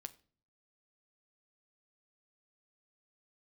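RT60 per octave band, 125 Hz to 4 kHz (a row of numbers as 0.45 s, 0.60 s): 0.80 s, 0.65 s, 0.50 s, 0.40 s, 0.35 s, 0.35 s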